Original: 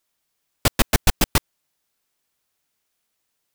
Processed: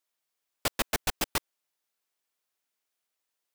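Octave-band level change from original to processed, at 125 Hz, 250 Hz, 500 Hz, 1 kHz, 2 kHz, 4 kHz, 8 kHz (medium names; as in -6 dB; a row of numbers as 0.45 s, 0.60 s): -18.5 dB, -13.5 dB, -9.0 dB, -8.0 dB, -8.0 dB, -8.5 dB, -9.0 dB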